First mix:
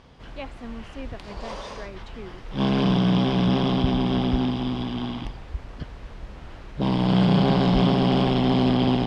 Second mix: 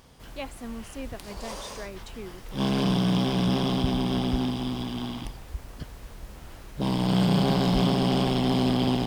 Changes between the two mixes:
background −3.5 dB
master: remove low-pass filter 3,700 Hz 12 dB per octave

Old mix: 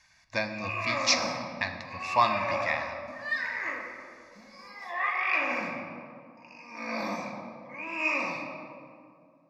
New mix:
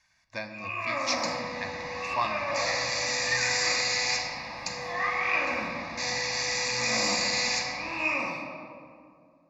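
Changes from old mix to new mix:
speech −6.0 dB
second sound: unmuted

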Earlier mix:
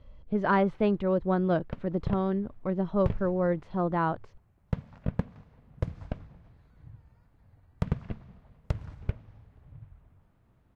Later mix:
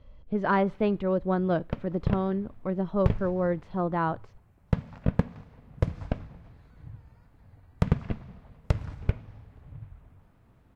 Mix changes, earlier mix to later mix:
background +5.5 dB
reverb: on, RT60 0.50 s

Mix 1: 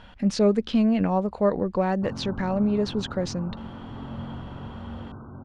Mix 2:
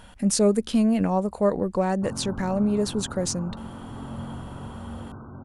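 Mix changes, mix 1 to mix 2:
speech: add parametric band 5,200 Hz −7 dB 2.8 octaves
master: remove high-frequency loss of the air 250 metres

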